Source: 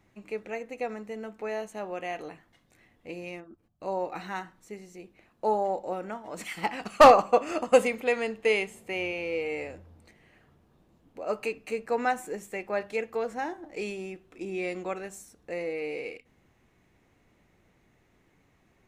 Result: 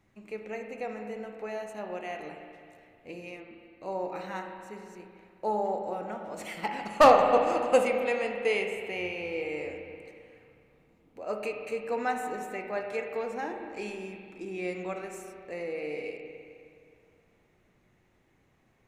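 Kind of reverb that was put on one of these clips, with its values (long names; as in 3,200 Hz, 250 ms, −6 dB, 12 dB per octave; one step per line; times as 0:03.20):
spring reverb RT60 2.3 s, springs 33/52 ms, chirp 40 ms, DRR 3.5 dB
level −3.5 dB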